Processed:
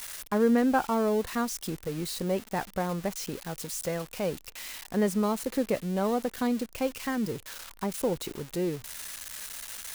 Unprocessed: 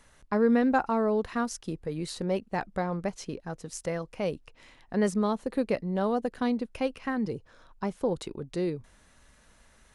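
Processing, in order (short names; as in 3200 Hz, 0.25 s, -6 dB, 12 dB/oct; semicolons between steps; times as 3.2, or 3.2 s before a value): switching spikes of -24 dBFS; high shelf 4300 Hz -8.5 dB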